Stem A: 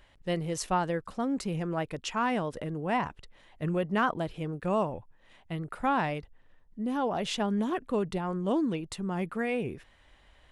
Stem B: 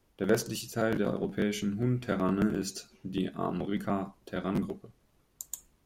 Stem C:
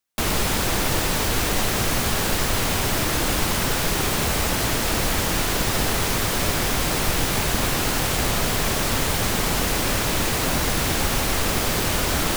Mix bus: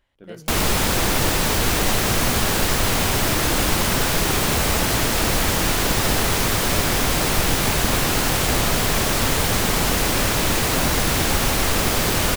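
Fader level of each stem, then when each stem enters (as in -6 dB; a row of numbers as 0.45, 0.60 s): -10.5, -13.5, +2.5 dB; 0.00, 0.00, 0.30 s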